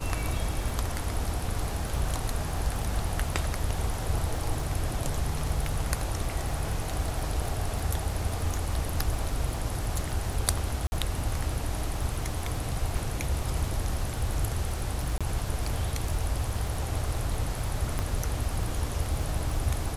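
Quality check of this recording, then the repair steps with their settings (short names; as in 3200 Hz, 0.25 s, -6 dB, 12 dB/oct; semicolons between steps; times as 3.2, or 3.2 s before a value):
crackle 42/s -34 dBFS
10.87–10.92 gap 50 ms
15.18–15.21 gap 26 ms
17.99 pop -16 dBFS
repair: de-click; interpolate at 10.87, 50 ms; interpolate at 15.18, 26 ms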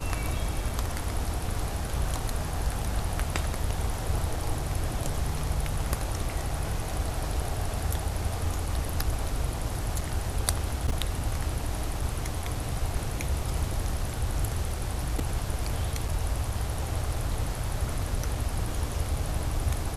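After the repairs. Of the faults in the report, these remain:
none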